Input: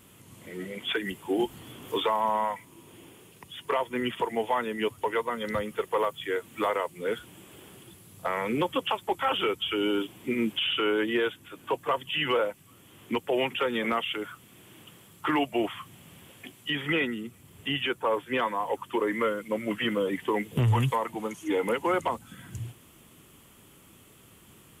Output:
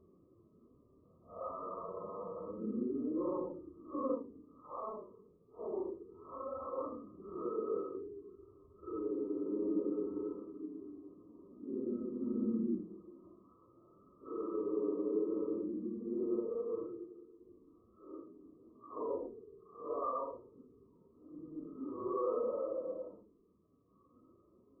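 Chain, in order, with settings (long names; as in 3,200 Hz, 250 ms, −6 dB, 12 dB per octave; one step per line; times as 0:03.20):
mains-hum notches 50/100/150/200/250/300/350/400/450 Hz
dynamic equaliser 400 Hz, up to −5 dB, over −39 dBFS, Q 1.2
phaser with its sweep stopped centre 340 Hz, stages 4
extreme stretch with random phases 5.1×, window 0.05 s, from 0:07.98
linear-phase brick-wall low-pass 1,300 Hz
level −4 dB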